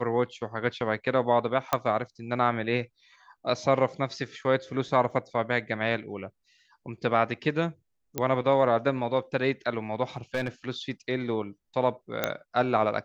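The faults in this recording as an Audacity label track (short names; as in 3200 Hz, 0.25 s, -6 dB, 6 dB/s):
1.730000	1.730000	pop -9 dBFS
5.110000	5.110000	gap 2.5 ms
8.180000	8.180000	pop -12 dBFS
10.160000	10.480000	clipped -23 dBFS
12.240000	12.240000	pop -10 dBFS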